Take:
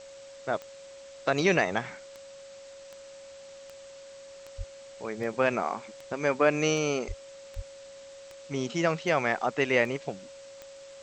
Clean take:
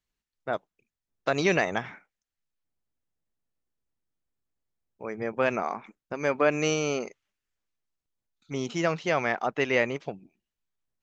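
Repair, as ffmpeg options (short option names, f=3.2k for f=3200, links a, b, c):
-filter_complex "[0:a]adeclick=t=4,bandreject=f=550:w=30,asplit=3[a][b][c];[a]afade=t=out:st=4.57:d=0.02[d];[b]highpass=f=140:w=0.5412,highpass=f=140:w=1.3066,afade=t=in:st=4.57:d=0.02,afade=t=out:st=4.69:d=0.02[e];[c]afade=t=in:st=4.69:d=0.02[f];[d][e][f]amix=inputs=3:normalize=0,asplit=3[g][h][i];[g]afade=t=out:st=7.07:d=0.02[j];[h]highpass=f=140:w=0.5412,highpass=f=140:w=1.3066,afade=t=in:st=7.07:d=0.02,afade=t=out:st=7.19:d=0.02[k];[i]afade=t=in:st=7.19:d=0.02[l];[j][k][l]amix=inputs=3:normalize=0,asplit=3[m][n][o];[m]afade=t=out:st=7.55:d=0.02[p];[n]highpass=f=140:w=0.5412,highpass=f=140:w=1.3066,afade=t=in:st=7.55:d=0.02,afade=t=out:st=7.67:d=0.02[q];[o]afade=t=in:st=7.67:d=0.02[r];[p][q][r]amix=inputs=3:normalize=0,afftdn=nr=30:nf=-47"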